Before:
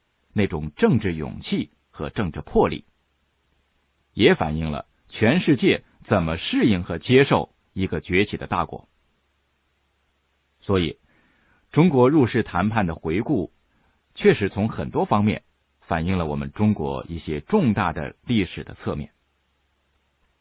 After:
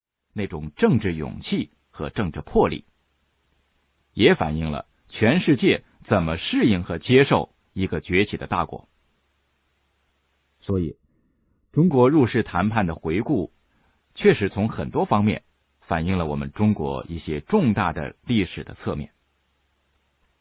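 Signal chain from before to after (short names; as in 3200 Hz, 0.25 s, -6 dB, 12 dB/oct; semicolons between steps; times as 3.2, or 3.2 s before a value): opening faded in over 0.87 s; 10.7–11.91 running mean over 56 samples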